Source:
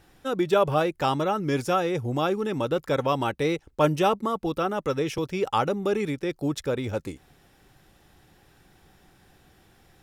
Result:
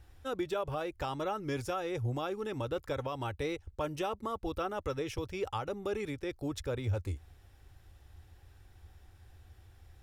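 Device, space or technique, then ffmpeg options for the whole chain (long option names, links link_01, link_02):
car stereo with a boomy subwoofer: -af "lowshelf=frequency=120:width_type=q:width=3:gain=11,alimiter=limit=-17.5dB:level=0:latency=1:release=170,volume=-7.5dB"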